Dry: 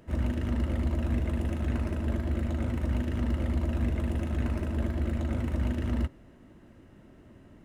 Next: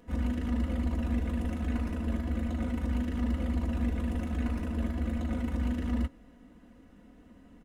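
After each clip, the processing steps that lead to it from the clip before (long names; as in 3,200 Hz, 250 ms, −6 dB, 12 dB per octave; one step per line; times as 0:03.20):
comb filter 4.1 ms, depth 91%
level −4 dB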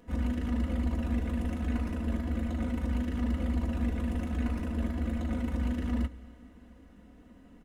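four-comb reverb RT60 3.6 s, combs from 32 ms, DRR 17.5 dB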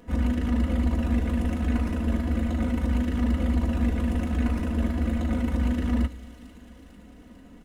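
delay with a high-pass on its return 448 ms, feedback 67%, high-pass 3,400 Hz, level −11 dB
level +6 dB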